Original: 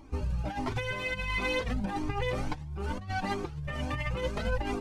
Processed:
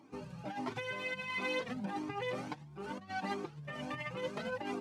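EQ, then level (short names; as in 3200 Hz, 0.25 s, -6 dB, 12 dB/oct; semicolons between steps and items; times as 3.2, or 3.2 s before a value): HPF 150 Hz 24 dB/oct; high shelf 8000 Hz -5 dB; -5.0 dB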